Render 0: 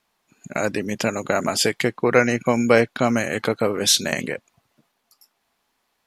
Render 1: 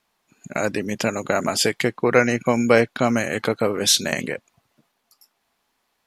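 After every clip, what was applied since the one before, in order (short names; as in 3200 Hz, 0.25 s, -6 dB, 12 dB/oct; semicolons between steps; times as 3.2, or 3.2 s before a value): nothing audible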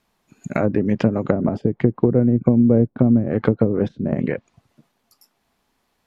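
treble ducked by the level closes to 330 Hz, closed at -16.5 dBFS; low shelf 380 Hz +11 dB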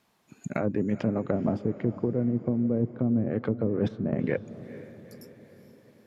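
HPF 80 Hz; reverse; compressor, threshold -23 dBFS, peak gain reduction 13.5 dB; reverse; diffused feedback echo 0.455 s, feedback 54%, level -15 dB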